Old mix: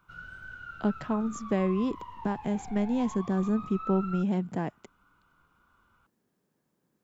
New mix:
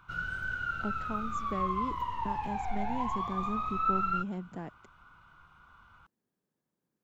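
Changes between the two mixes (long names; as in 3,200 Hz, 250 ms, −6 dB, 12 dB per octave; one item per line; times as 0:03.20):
speech −9.5 dB
background +9.0 dB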